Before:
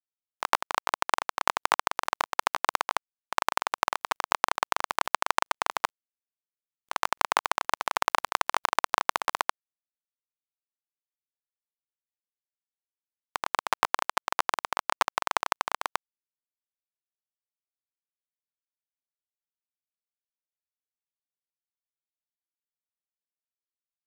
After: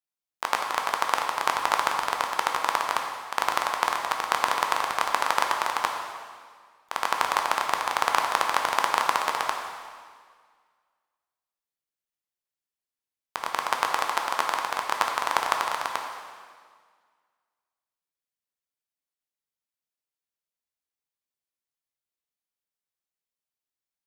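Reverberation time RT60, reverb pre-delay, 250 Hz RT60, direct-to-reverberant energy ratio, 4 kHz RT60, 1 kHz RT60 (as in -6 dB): 1.8 s, 5 ms, 1.9 s, 2.0 dB, 1.7 s, 1.8 s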